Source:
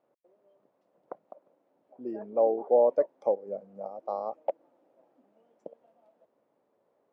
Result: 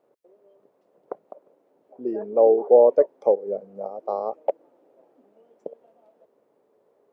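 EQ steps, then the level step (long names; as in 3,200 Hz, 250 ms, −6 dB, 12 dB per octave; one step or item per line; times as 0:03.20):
parametric band 420 Hz +9 dB 0.43 octaves
+4.5 dB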